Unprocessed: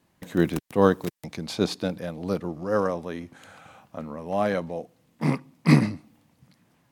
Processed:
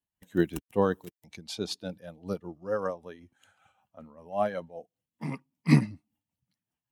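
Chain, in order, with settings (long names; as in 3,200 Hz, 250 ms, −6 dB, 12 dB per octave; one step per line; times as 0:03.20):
spectral dynamics exaggerated over time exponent 1.5
amplitude tremolo 5.2 Hz, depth 60%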